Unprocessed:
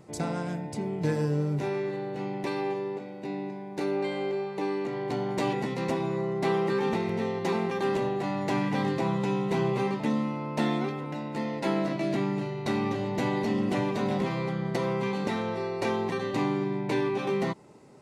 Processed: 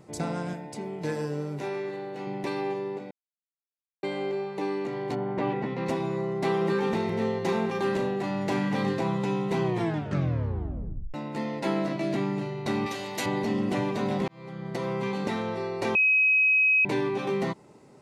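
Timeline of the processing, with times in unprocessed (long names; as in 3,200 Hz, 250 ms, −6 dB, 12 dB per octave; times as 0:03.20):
0:00.53–0:02.27: high-pass filter 310 Hz 6 dB per octave
0:03.11–0:04.03: silence
0:05.14–0:05.85: low-pass filter 1,700 Hz → 3,000 Hz
0:06.57–0:09.03: flutter between parallel walls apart 6.2 metres, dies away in 0.26 s
0:09.63: tape stop 1.51 s
0:12.86–0:13.26: spectral tilt +4 dB per octave
0:14.28–0:15.28: fade in equal-power
0:15.95–0:16.85: beep over 2,540 Hz −18 dBFS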